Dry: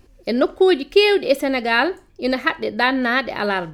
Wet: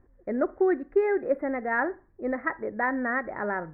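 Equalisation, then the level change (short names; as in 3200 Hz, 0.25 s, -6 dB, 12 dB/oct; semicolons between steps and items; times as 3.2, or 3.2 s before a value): elliptic low-pass 1900 Hz, stop band 40 dB; -8.0 dB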